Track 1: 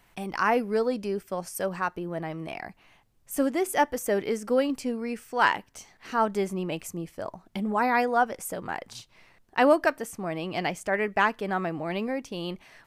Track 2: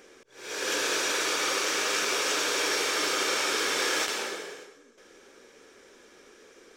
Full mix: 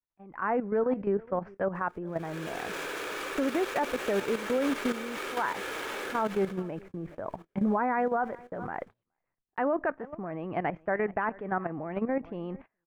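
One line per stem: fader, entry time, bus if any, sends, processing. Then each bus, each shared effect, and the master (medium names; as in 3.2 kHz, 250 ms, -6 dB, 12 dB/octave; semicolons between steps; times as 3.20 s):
-5.0 dB, 0.00 s, no send, echo send -22.5 dB, low-pass 1.8 kHz 24 dB/octave; level rider gain up to 12 dB
-1.0 dB, 1.75 s, no send, echo send -3.5 dB, median filter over 9 samples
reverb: none
echo: delay 420 ms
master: gate -38 dBFS, range -28 dB; level held to a coarse grid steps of 12 dB; peak limiter -19.5 dBFS, peak gain reduction 8 dB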